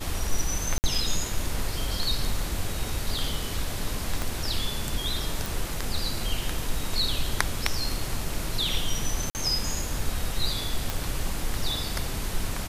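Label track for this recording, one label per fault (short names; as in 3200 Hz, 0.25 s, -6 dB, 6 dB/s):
0.780000	0.840000	gap 59 ms
4.220000	4.220000	pop
5.460000	5.460000	pop
9.300000	9.350000	gap 49 ms
10.900000	10.900000	pop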